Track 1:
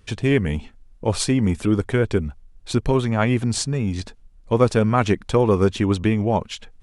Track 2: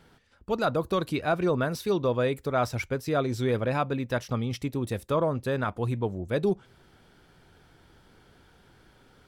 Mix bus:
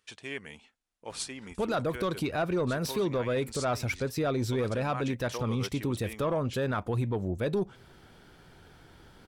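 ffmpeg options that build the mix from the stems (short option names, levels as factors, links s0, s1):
-filter_complex "[0:a]highpass=f=1400:p=1,volume=0.316[s0];[1:a]asoftclip=type=tanh:threshold=0.133,adelay=1100,volume=1.41[s1];[s0][s1]amix=inputs=2:normalize=0,alimiter=limit=0.0841:level=0:latency=1:release=89"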